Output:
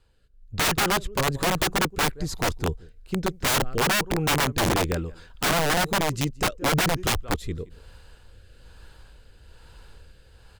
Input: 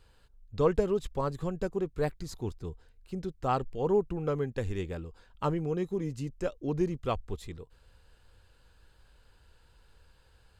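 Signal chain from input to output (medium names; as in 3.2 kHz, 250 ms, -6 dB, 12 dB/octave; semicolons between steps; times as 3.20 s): dynamic bell 1.5 kHz, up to +6 dB, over -54 dBFS, Q 3.5; level rider gain up to 13 dB; delay 172 ms -22.5 dB; rotary cabinet horn 1.1 Hz; integer overflow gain 17 dB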